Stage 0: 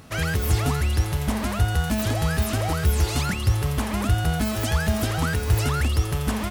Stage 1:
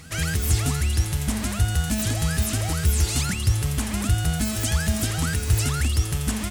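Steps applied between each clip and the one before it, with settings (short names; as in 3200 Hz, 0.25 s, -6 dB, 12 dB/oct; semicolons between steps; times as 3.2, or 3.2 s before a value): graphic EQ 500/1000/8000 Hz -6/-6/+8 dB; pre-echo 0.23 s -20.5 dB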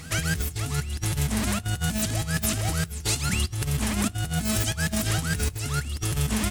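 negative-ratio compressor -26 dBFS, ratio -0.5; on a send at -22 dB: reverb RT60 0.50 s, pre-delay 7 ms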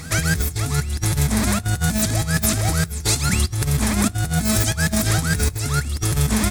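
bell 2900 Hz -10.5 dB 0.23 oct; gain +6.5 dB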